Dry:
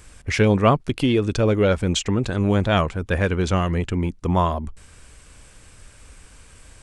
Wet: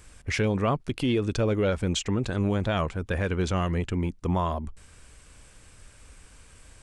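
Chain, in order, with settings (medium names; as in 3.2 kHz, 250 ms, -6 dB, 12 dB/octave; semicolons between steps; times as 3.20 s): peak limiter -12 dBFS, peak gain reduction 6.5 dB; trim -4.5 dB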